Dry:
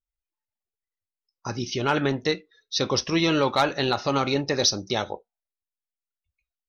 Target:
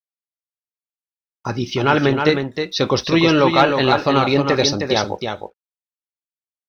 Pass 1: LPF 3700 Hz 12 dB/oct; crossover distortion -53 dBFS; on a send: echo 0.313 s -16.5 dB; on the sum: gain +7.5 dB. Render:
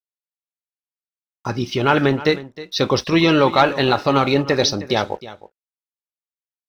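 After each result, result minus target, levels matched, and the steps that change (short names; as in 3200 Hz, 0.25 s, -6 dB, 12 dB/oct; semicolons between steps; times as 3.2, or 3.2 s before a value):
echo-to-direct -10.5 dB; crossover distortion: distortion +8 dB
change: echo 0.313 s -6 dB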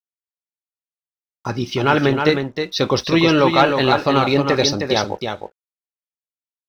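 crossover distortion: distortion +8 dB
change: crossover distortion -61.5 dBFS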